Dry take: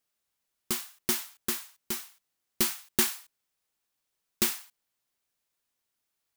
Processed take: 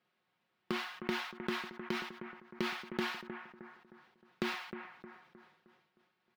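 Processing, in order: HPF 100 Hz 24 dB/oct; high shelf 8000 Hz -6.5 dB; notch 570 Hz, Q 12; comb 5.5 ms, depth 56%; compressor 6:1, threshold -43 dBFS, peak gain reduction 21 dB; air absorption 350 m; analogue delay 0.31 s, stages 4096, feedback 45%, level -9.5 dB; sustainer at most 76 dB/s; gain +11 dB

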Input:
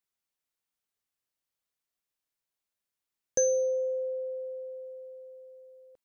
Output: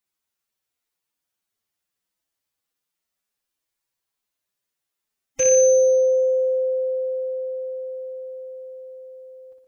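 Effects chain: rattling part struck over -46 dBFS, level -23 dBFS; flutter echo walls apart 6.3 m, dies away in 0.44 s; time stretch by phase-locked vocoder 1.6×; gain +4.5 dB

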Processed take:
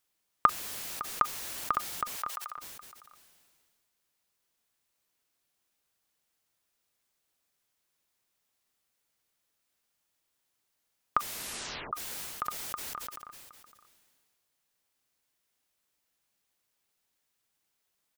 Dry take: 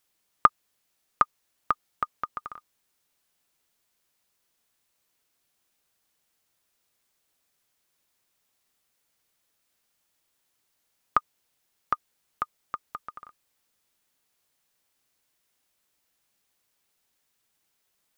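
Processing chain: 2.16–2.57 HPF 580 Hz 24 dB/oct; echo 0.558 s -21.5 dB; 11.18 tape stop 0.75 s; sustainer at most 28 dB/s; gain -4.5 dB

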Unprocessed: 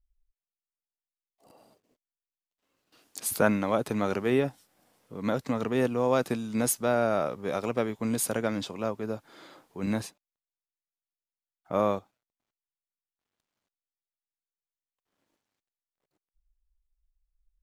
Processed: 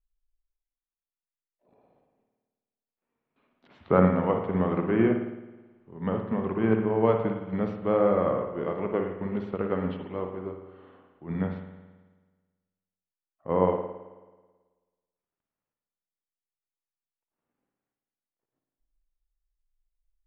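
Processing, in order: Bessel low-pass 2100 Hz, order 6; notches 60/120 Hz; varispeed -13%; reverb RT60 1.4 s, pre-delay 54 ms, DRR 2 dB; upward expander 1.5:1, over -37 dBFS; gain +2.5 dB

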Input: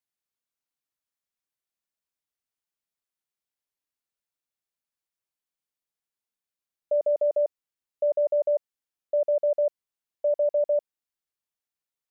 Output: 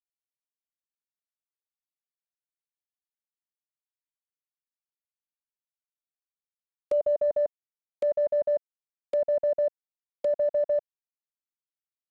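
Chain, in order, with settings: low-pass sweep 360 Hz -> 790 Hz, 4.18–7.35; companded quantiser 4-bit; treble ducked by the level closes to 770 Hz, closed at -26.5 dBFS; gain -6.5 dB

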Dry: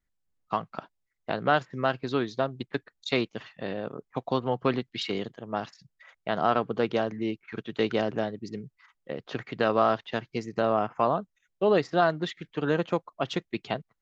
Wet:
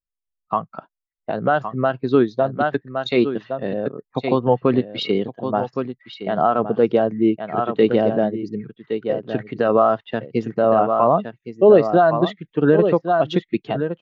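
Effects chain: echo 1.115 s -8 dB; maximiser +15 dB; spectral expander 1.5:1; gain -1 dB

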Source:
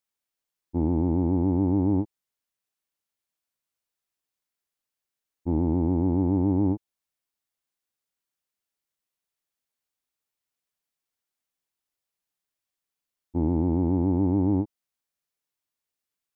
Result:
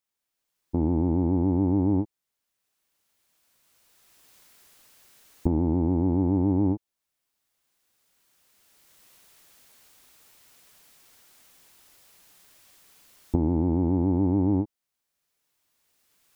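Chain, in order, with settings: recorder AGC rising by 13 dB/s

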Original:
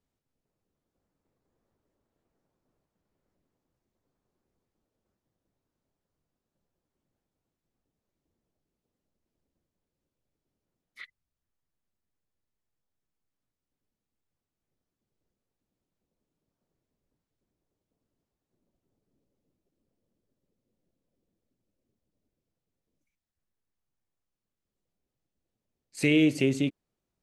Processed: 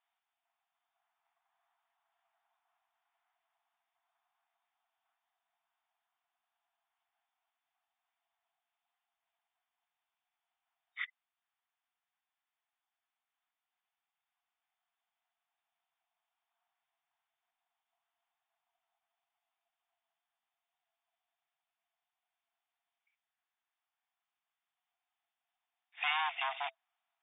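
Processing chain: overloaded stage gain 29 dB; FFT band-pass 660–3700 Hz; gain +6 dB

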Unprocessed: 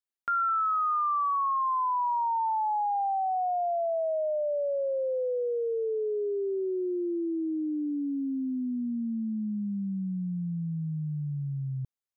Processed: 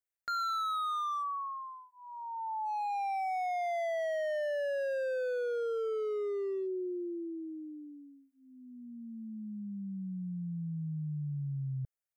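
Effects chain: fixed phaser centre 1000 Hz, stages 6; overloaded stage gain 32 dB

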